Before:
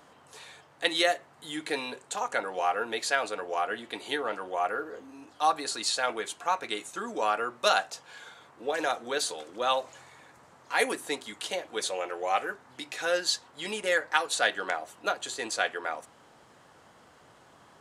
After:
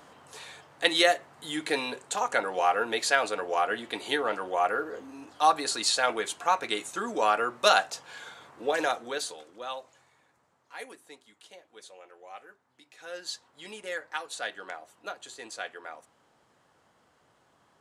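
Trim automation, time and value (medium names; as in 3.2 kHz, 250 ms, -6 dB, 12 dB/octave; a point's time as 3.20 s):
8.75 s +3 dB
9.65 s -10 dB
11.22 s -18 dB
12.90 s -18 dB
13.30 s -9 dB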